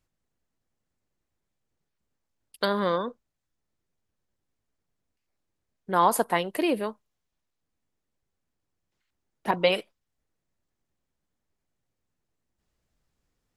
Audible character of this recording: noise floor -82 dBFS; spectral tilt -4.0 dB/octave

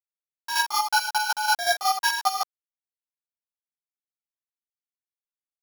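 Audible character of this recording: a buzz of ramps at a fixed pitch in blocks of 8 samples; chopped level 5.4 Hz, depth 60%, duty 30%; a quantiser's noise floor 8-bit, dither none; a shimmering, thickened sound

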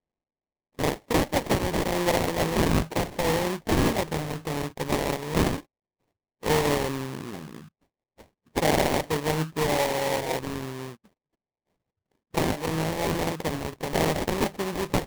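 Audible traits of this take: aliases and images of a low sample rate 1.4 kHz, jitter 20%

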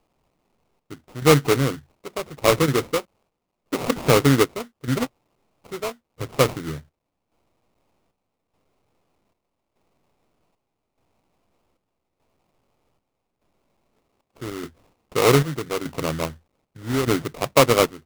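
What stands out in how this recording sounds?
a quantiser's noise floor 12-bit, dither triangular; chopped level 0.82 Hz, depth 65%, duty 65%; aliases and images of a low sample rate 1.7 kHz, jitter 20%

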